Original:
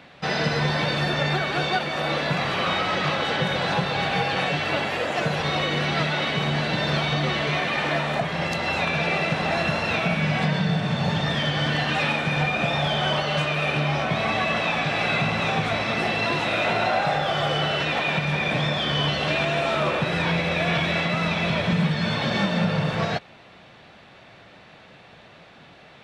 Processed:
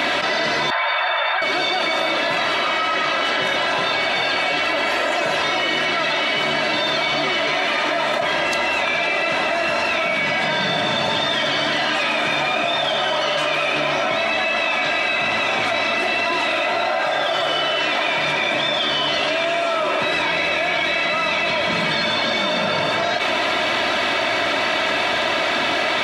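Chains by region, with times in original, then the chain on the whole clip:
0.70–1.42 s: high-pass 750 Hz 24 dB/octave + distance through air 480 m
whole clip: high-pass 510 Hz 6 dB/octave; comb 3.1 ms, depth 66%; level flattener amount 100%

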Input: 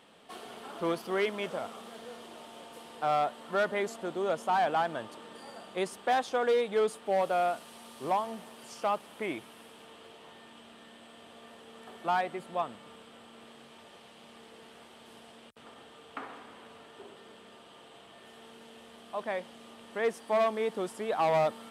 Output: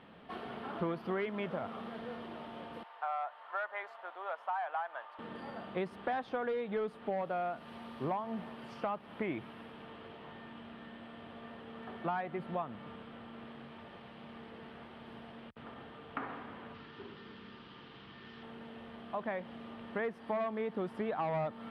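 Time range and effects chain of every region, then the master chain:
2.83–5.19 s: high-pass 780 Hz 24 dB/octave + treble shelf 2.2 kHz -11.5 dB
16.74–18.43 s: resonant low-pass 5.2 kHz, resonance Q 2.8 + peaking EQ 650 Hz -11.5 dB 0.63 oct
whole clip: peaking EQ 6.9 kHz -8 dB 0.59 oct; compression 4:1, threshold -36 dBFS; FFT filter 150 Hz 0 dB, 460 Hz -9 dB, 1.8 kHz -7 dB, 4.3 kHz -17 dB, 7.7 kHz -29 dB; trim +10 dB

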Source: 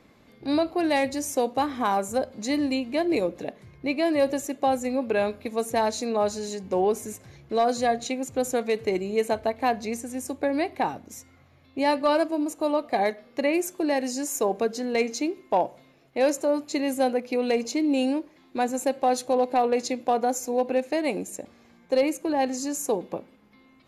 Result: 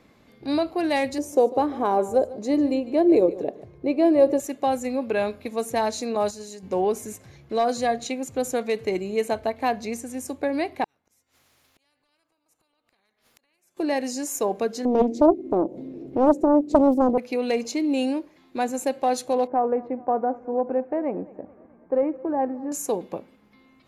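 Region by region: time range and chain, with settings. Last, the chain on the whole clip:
1.18–4.40 s: FFT filter 250 Hz 0 dB, 370 Hz +10 dB, 1.9 kHz -8 dB + delay 147 ms -17 dB
6.15–6.63 s: gate -31 dBFS, range -8 dB + treble shelf 6.6 kHz +8.5 dB
10.84–13.77 s: compression 4:1, threshold -33 dBFS + inverted gate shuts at -37 dBFS, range -37 dB + spectrum-flattening compressor 4:1
14.85–17.18 s: FFT filter 130 Hz 0 dB, 330 Hz +15 dB, 660 Hz -6 dB, 1.1 kHz -18 dB + upward compressor, threshold -23 dBFS + loudspeaker Doppler distortion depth 0.86 ms
19.47–22.72 s: low-pass 1.4 kHz 24 dB/octave + feedback delay 216 ms, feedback 58%, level -21.5 dB
whole clip: none

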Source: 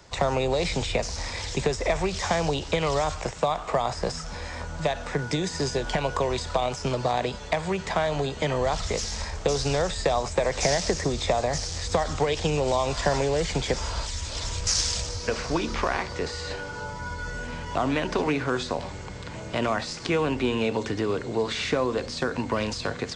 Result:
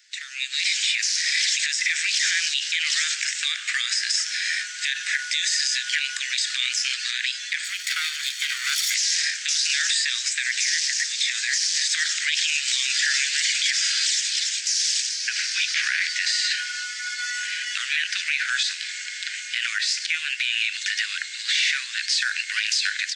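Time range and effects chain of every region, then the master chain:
7.64–8.95 s: comb filter that takes the minimum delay 0.88 ms + peaking EQ 2.4 kHz -4 dB 0.79 oct
whole clip: steep high-pass 1.6 kHz 72 dB/octave; level rider gain up to 16 dB; peak limiter -12 dBFS

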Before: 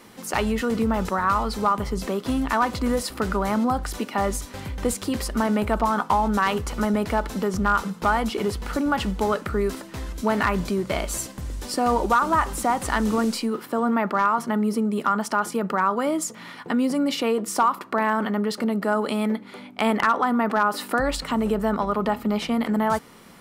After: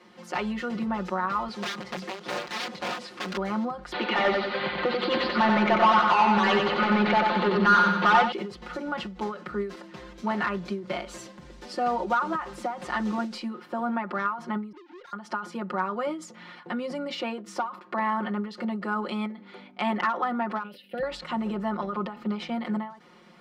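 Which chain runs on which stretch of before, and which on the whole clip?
1.48–3.37 s: one-bit delta coder 64 kbps, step -35.5 dBFS + integer overflow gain 19.5 dB + high-pass 130 Hz
3.92–8.32 s: Chebyshev low-pass 4.5 kHz, order 6 + overdrive pedal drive 23 dB, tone 3.6 kHz, clips at -9 dBFS + feedback delay 91 ms, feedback 51%, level -3.5 dB
14.72–15.13 s: formants replaced by sine waves + valve stage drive 41 dB, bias 0.25
20.63–21.03 s: band-stop 1.3 kHz, Q 9.2 + gate -32 dBFS, range -11 dB + FFT filter 200 Hz 0 dB, 340 Hz -9 dB, 520 Hz +1 dB, 1.1 kHz -25 dB, 2.9 kHz +11 dB, 6.8 kHz -15 dB, 12 kHz +9 dB
whole clip: three-band isolator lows -14 dB, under 150 Hz, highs -22 dB, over 5.4 kHz; comb 5.6 ms, depth 99%; endings held to a fixed fall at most 120 dB/s; trim -7.5 dB

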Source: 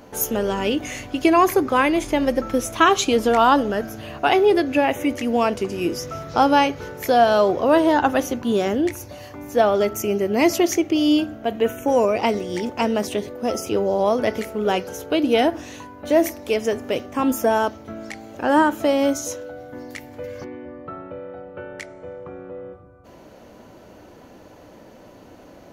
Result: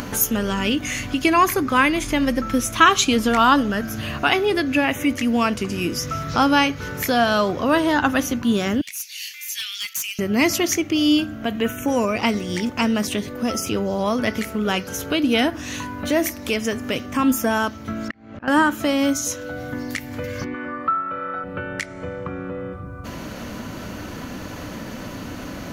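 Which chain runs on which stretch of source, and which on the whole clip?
8.81–10.19 s: steep high-pass 2.3 kHz + hard clipper -32.5 dBFS
18.08–18.48 s: slow attack 798 ms + low-pass 2.2 kHz
20.54–21.44 s: high-pass 340 Hz 6 dB/octave + peaking EQ 1.3 kHz +13 dB 0.59 oct
whole clip: high-order bell 550 Hz -9 dB; upward compressor, threshold -24 dBFS; trim +4 dB

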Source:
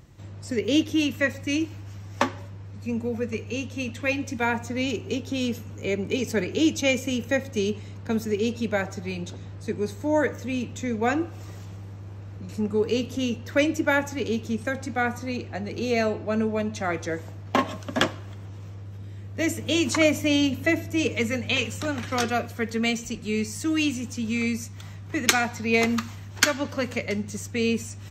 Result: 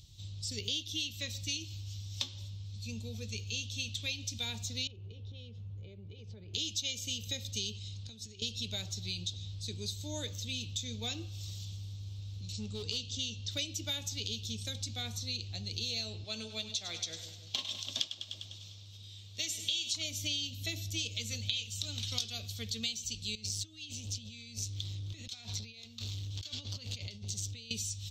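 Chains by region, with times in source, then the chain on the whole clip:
4.87–6.54 s: low-pass 1.1 kHz + peaking EQ 260 Hz -14 dB 0.24 oct + compression 3:1, threshold -36 dBFS
7.76–8.42 s: low-pass 9.9 kHz 24 dB/octave + compression 12:1, threshold -36 dBFS
12.52–13.51 s: steep low-pass 8.2 kHz 96 dB/octave + hard clipper -19.5 dBFS
16.24–19.94 s: bass shelf 110 Hz -11 dB + two-band feedback delay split 720 Hz, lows 161 ms, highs 100 ms, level -12 dB + overdrive pedal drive 7 dB, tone 6.7 kHz, clips at -4.5 dBFS
23.35–27.71 s: compressor with a negative ratio -35 dBFS + treble shelf 5.5 kHz -9 dB + transformer saturation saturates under 530 Hz
whole clip: FFT filter 100 Hz 0 dB, 250 Hz -15 dB, 1.8 kHz -21 dB, 3.6 kHz +15 dB, 9 kHz +3 dB; compression 5:1, threshold -30 dBFS; trim -3 dB

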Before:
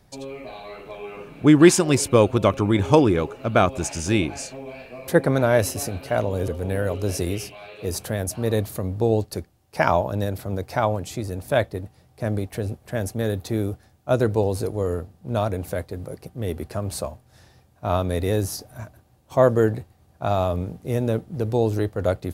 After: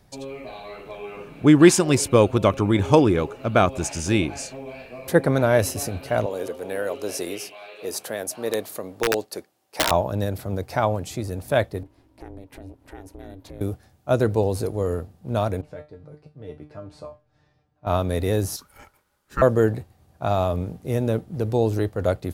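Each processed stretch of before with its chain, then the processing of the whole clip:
6.26–9.91 s: high-pass 350 Hz + integer overflow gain 12.5 dB
11.83–13.61 s: tone controls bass +1 dB, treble -6 dB + compression 2.5:1, threshold -39 dBFS + ring modulator 190 Hz
15.61–17.87 s: low-pass 5.4 kHz + treble shelf 3.4 kHz -8.5 dB + feedback comb 150 Hz, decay 0.25 s, mix 90%
18.56–19.42 s: high-pass 710 Hz 6 dB/octave + ring modulator 700 Hz
whole clip: none

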